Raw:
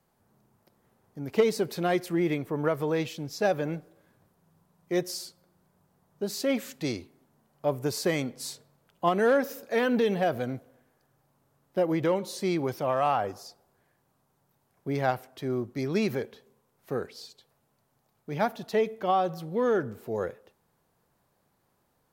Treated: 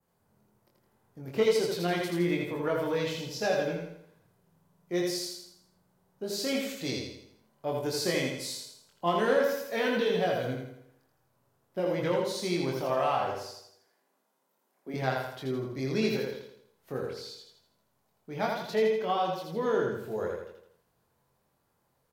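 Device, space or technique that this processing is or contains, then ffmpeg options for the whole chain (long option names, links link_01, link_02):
slapback doubling: -filter_complex "[0:a]asettb=1/sr,asplit=3[link_01][link_02][link_03];[link_01]atrim=end=13.444[link_04];[link_02]atrim=start=13.44:end=14.94,asetpts=PTS-STARTPTS,afade=type=in:duration=0.004:curve=qsin,afade=type=out:start_time=1.496:duration=0.004:curve=qsin,highpass=frequency=230:width=0.5412,highpass=frequency=230:width=1.3066[link_05];[link_03]atrim=start=14.936[link_06];[link_04][link_05]acrossfade=duration=0.004:curve1=hsin:curve2=qsin[link_07];[link_07][link_06]acrossfade=duration=0.004:curve1=qsin:curve2=hsin,aecho=1:1:82|164|246|328|410|492:0.668|0.307|0.141|0.0651|0.0299|0.0138,asplit=3[link_08][link_09][link_10];[link_09]adelay=23,volume=-3dB[link_11];[link_10]adelay=80,volume=-9dB[link_12];[link_08][link_11][link_12]amix=inputs=3:normalize=0,adynamicequalizer=threshold=0.00562:dfrequency=3900:dqfactor=0.93:tfrequency=3900:tqfactor=0.93:attack=5:release=100:ratio=0.375:range=3:mode=boostabove:tftype=bell,volume=-6dB"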